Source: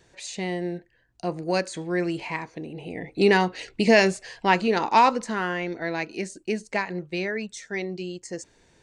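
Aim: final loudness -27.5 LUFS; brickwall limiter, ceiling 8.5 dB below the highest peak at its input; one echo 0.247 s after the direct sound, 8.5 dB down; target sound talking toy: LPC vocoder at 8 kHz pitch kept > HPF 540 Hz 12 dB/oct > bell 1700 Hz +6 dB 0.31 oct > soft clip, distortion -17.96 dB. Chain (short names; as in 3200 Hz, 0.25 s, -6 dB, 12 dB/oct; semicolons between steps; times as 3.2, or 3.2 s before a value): limiter -14.5 dBFS; echo 0.247 s -8.5 dB; LPC vocoder at 8 kHz pitch kept; HPF 540 Hz 12 dB/oct; bell 1700 Hz +6 dB 0.31 oct; soft clip -18 dBFS; gain +4.5 dB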